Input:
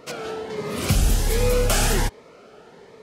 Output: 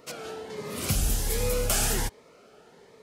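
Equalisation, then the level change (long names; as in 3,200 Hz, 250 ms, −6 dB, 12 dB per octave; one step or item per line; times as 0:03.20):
high-shelf EQ 6,200 Hz +9.5 dB
−7.5 dB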